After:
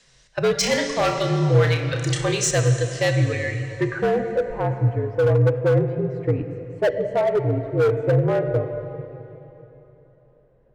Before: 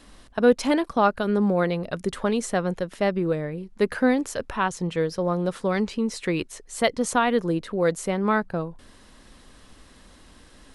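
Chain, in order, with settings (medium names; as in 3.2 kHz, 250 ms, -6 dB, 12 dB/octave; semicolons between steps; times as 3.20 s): spectral noise reduction 12 dB; low-pass sweep 6.2 kHz -> 610 Hz, 2.82–4.30 s; in parallel at -4 dB: saturation -18 dBFS, distortion -11 dB; on the sum: frequency shift -54 Hz; graphic EQ 250/500/1000/2000/4000/8000 Hz -9/+7/-4/+9/+3/+9 dB; plate-style reverb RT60 3.3 s, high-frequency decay 0.9×, DRR 6 dB; overload inside the chain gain 11 dB; peaking EQ 130 Hz +13 dB 0.32 oct; 0.58–2.51 s: flutter echo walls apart 5.4 m, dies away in 0.27 s; trim -4 dB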